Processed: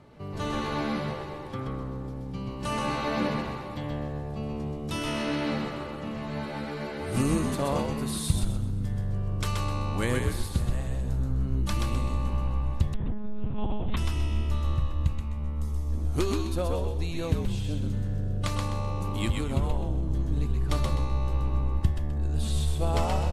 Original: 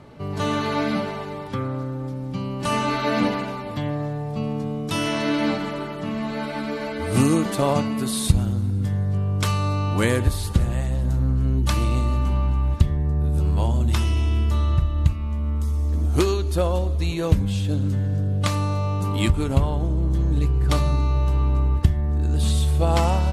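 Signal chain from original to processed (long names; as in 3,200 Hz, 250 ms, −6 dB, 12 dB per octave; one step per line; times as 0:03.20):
echo with shifted repeats 128 ms, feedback 31%, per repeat −70 Hz, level −3.5 dB
0:12.94–0:13.97: one-pitch LPC vocoder at 8 kHz 210 Hz
level −8 dB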